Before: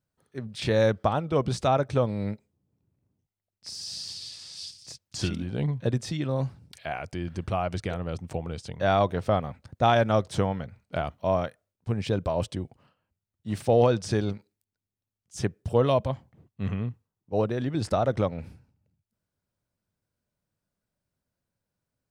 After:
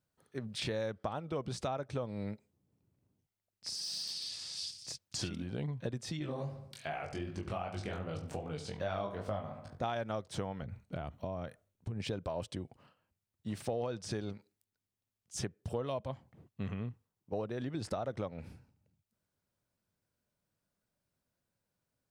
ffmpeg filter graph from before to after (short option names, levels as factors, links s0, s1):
-filter_complex "[0:a]asettb=1/sr,asplit=3[s0][s1][s2];[s0]atrim=end=3.764[s3];[s1]atrim=start=3.76:end=4.3,asetpts=PTS-STARTPTS,afade=t=in:d=0.004:c=qsin,afade=t=out:st=0.536:d=0.004:c=qsin,highpass=f=150:w=0.5412,highpass=f=150:w=1.3066,bandreject=f=7100:w=6.6,volume=35.5,asoftclip=hard,volume=0.0282[s4];[s2]atrim=start=4.296[s5];[s3][s4]acrossfade=d=0.004:c1=hsin:c2=qsin[s6];[s6][s5]acrossfade=d=0.004:c1=qsin:c2=hsin,asettb=1/sr,asplit=3[s7][s8][s9];[s7]atrim=end=6.194[s10];[s8]atrim=start=6.19:end=9.84,asetpts=PTS-STARTPTS,afade=t=in:d=0.004:c=qsin,afade=t=out:st=3.646:d=0.004:c=qsin,flanger=delay=18.5:depth=6.6:speed=2.6,asplit=2[s11][s12];[s12]adelay=20,volume=0.501[s13];[s11][s13]amix=inputs=2:normalize=0,atrim=end_sample=160965,asplit=2[s14][s15];[s15]adelay=71,lowpass=f=2900:p=1,volume=0.282,asplit=2[s16][s17];[s17]adelay=71,lowpass=f=2900:p=1,volume=0.48,asplit=2[s18][s19];[s19]adelay=71,lowpass=f=2900:p=1,volume=0.48,asplit=2[s20][s21];[s21]adelay=71,lowpass=f=2900:p=1,volume=0.48,asplit=2[s22][s23];[s23]adelay=71,lowpass=f=2900:p=1,volume=0.48[s24];[s14][s16][s18][s20][s22][s24]amix=inputs=6:normalize=0,atrim=end_sample=160965[s25];[s9]atrim=start=9.836[s26];[s10][s25]acrossfade=d=0.004:c1=hsin:c2=qsin[s27];[s27][s26]acrossfade=d=0.004:c1=qsin:c2=hsin,asettb=1/sr,asplit=3[s28][s29][s30];[s28]atrim=end=10.624[s31];[s29]atrim=start=10.62:end=12,asetpts=PTS-STARTPTS,afade=t=in:d=0.004:c=qsin,afade=t=out:st=1.376:d=0.004:c=qsin,lowshelf=f=280:g=10.5,bandreject=f=4900:w=8.4,acompressor=threshold=0.0282:ratio=4:attack=3.2:release=140:knee=1:detection=peak[s32];[s30]atrim=start=11.996[s33];[s31][s32]acrossfade=d=0.004:c1=hsin:c2=qsin[s34];[s34][s33]acrossfade=d=0.004:c1=qsin:c2=hsin,lowshelf=f=140:g=-5,acompressor=threshold=0.0158:ratio=4"